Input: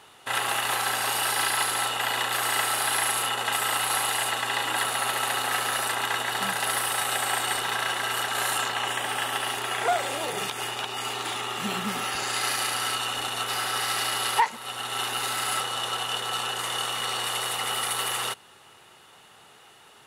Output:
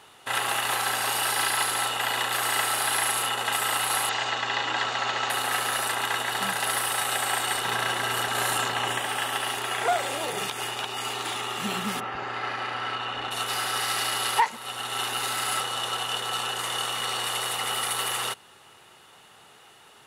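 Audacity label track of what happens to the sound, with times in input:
4.090000	5.300000	Butterworth low-pass 6,900 Hz 48 dB per octave
7.650000	8.990000	low-shelf EQ 440 Hz +6.5 dB
11.990000	13.300000	low-pass filter 1,600 Hz → 2,900 Hz

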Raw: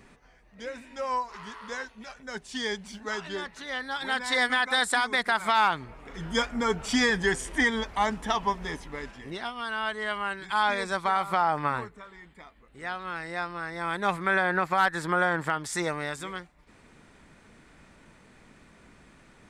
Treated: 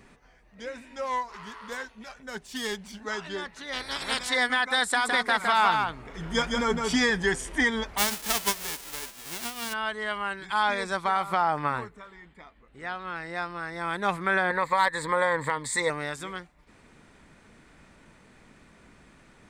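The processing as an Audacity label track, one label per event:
1.040000	2.990000	phase distortion by the signal itself depth 0.11 ms
3.720000	4.280000	ceiling on every frequency bin ceiling under each frame's peak by 25 dB
4.890000	6.970000	single-tap delay 161 ms −4 dB
7.970000	9.720000	spectral envelope flattened exponent 0.1
12.140000	13.350000	high-shelf EQ 8,000 Hz −9.5 dB
14.500000	15.900000	EQ curve with evenly spaced ripples crests per octave 1, crest to trough 13 dB

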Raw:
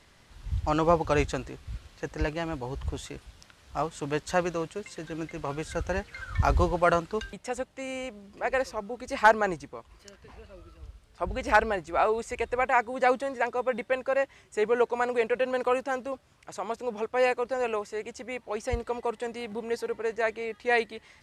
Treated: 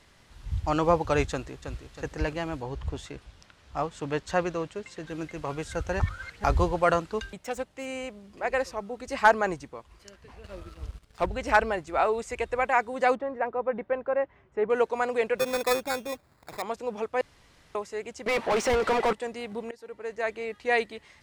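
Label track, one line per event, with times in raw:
1.300000	1.900000	delay throw 320 ms, feedback 50%, level −8 dB
2.620000	5.080000	high-shelf EQ 8,600 Hz −11.5 dB
6.000000	6.440000	reverse
7.370000	7.860000	phase distortion by the signal itself depth 0.089 ms
10.440000	11.260000	leveller curve on the samples passes 2
13.150000	14.700000	low-pass filter 1,400 Hz
15.380000	16.620000	sample-rate reduction 3,000 Hz
17.210000	17.750000	fill with room tone
18.260000	19.130000	mid-hump overdrive drive 33 dB, tone 2,100 Hz, clips at −16.5 dBFS
19.710000	20.410000	fade in, from −22 dB

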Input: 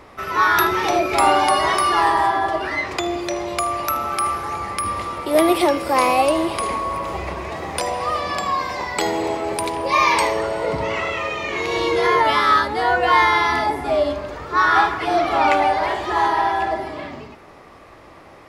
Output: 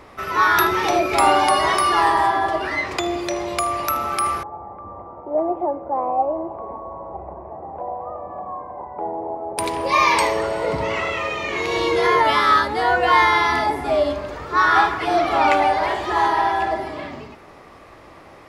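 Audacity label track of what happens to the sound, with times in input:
4.430000	9.580000	transistor ladder low-pass 910 Hz, resonance 55%

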